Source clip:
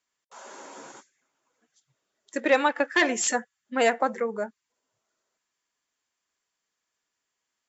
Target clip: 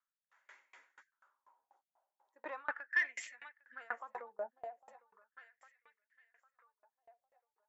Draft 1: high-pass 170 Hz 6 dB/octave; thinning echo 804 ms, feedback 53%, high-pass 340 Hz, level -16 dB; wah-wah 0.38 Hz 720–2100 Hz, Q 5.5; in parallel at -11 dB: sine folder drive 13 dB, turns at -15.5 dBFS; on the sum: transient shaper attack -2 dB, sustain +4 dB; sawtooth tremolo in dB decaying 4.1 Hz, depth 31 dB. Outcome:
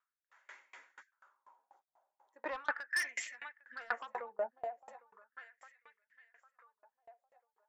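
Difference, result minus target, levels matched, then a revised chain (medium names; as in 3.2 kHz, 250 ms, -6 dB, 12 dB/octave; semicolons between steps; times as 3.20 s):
sine folder: distortion +22 dB
high-pass 170 Hz 6 dB/octave; thinning echo 804 ms, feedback 53%, high-pass 340 Hz, level -16 dB; wah-wah 0.38 Hz 720–2100 Hz, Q 5.5; in parallel at -11 dB: sine folder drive 2 dB, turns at -15.5 dBFS; on the sum: transient shaper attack -2 dB, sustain +4 dB; sawtooth tremolo in dB decaying 4.1 Hz, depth 31 dB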